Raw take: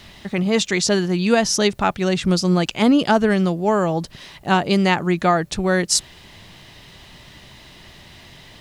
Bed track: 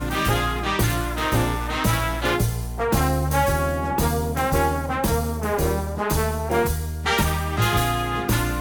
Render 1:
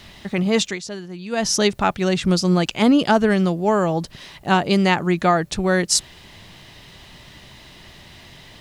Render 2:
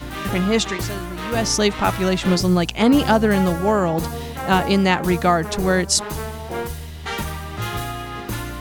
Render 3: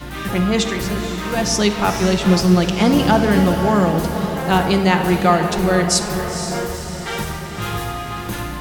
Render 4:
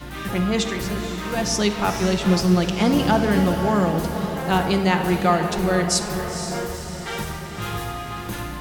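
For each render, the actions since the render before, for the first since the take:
0.63–1.47 dip -13.5 dB, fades 0.16 s
add bed track -6 dB
on a send: diffused feedback echo 0.491 s, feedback 54%, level -9 dB; on the sum: shoebox room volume 1900 m³, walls mixed, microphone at 0.9 m
gain -4 dB

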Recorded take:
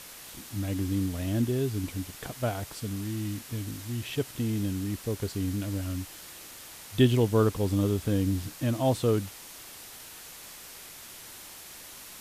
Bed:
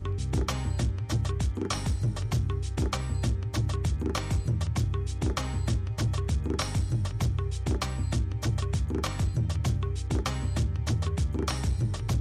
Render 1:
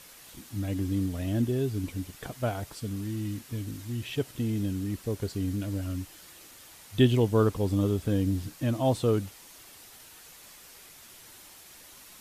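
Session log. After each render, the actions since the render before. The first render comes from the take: denoiser 6 dB, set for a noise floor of -46 dBFS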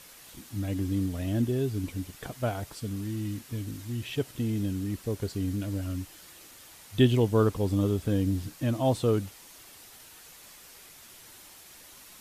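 nothing audible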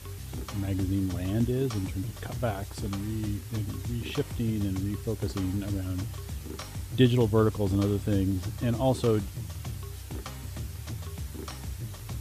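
add bed -9.5 dB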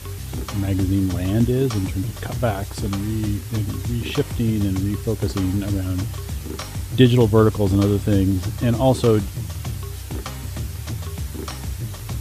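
gain +8.5 dB; limiter -3 dBFS, peak gain reduction 1.5 dB

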